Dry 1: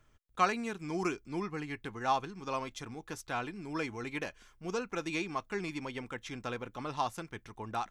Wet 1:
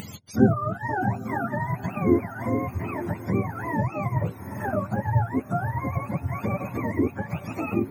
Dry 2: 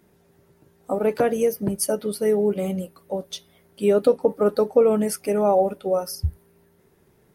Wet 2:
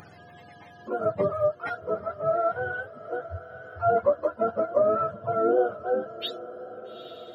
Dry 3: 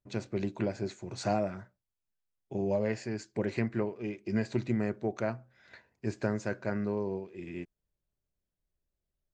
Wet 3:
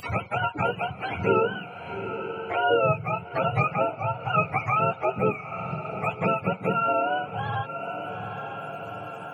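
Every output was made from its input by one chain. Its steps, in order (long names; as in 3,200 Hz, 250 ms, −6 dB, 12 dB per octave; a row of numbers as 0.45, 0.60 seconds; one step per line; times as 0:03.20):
frequency axis turned over on the octave scale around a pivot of 530 Hz
feedback delay with all-pass diffusion 844 ms, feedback 43%, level −16 dB
upward compression, threshold −32 dBFS
loudness normalisation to −27 LKFS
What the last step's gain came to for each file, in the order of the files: +10.0, −3.0, +9.5 decibels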